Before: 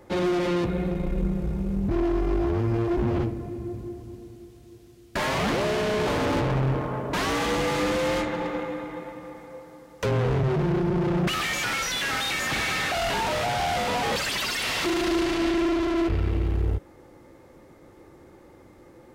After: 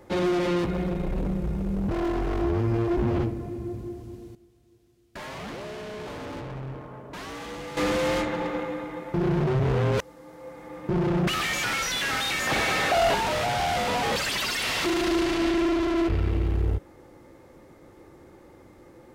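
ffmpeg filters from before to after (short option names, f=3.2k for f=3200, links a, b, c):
-filter_complex "[0:a]asettb=1/sr,asplit=3[a][b][c];[a]atrim=end=0.594[d];[b]atrim=start=0.59:end=2.42,asetpts=PTS-STARTPTS,afade=t=in:d=0.004:c=qsin,afade=t=out:st=1.826:d=0.004:c=qsin,aeval=exprs='0.0841*(abs(mod(val(0)/0.0841+3,4)-2)-1)':c=same[e];[c]atrim=start=2.416[f];[d][e]acrossfade=d=0.004:c1=hsin:c2=qsin[g];[g][f]acrossfade=d=0.004:c1=qsin:c2=hsin,asettb=1/sr,asplit=3[h][i][j];[h]atrim=end=12.474[k];[i]atrim=start=12.47:end=13.15,asetpts=PTS-STARTPTS,afade=t=in:d=0.004:c=qsin,afade=t=out:st=0.676:d=0.004:c=qsin,equalizer=f=560:t=o:w=1.7:g=7.5[l];[j]atrim=start=13.146[m];[k][l]acrossfade=d=0.004:c1=hsin:c2=qsin[n];[n][m]acrossfade=d=0.004:c1=qsin:c2=hsin,asplit=5[o][p][q][r][s];[o]atrim=end=4.352[t];[p]atrim=start=4.348:end=7.772,asetpts=PTS-STARTPTS,volume=-12dB[u];[q]atrim=start=7.768:end=9.142[v];[r]atrim=start=9.138:end=10.892,asetpts=PTS-STARTPTS,areverse[w];[s]atrim=start=10.888[x];[t][u]acrossfade=d=0.004:c1=hsin:c2=hsin[y];[y][v]acrossfade=d=0.004:c1=hsin:c2=hsin[z];[z][w]acrossfade=d=0.004:c1=hsin:c2=hsin[aa];[aa][x]acrossfade=d=0.004:c1=hsin:c2=hsin"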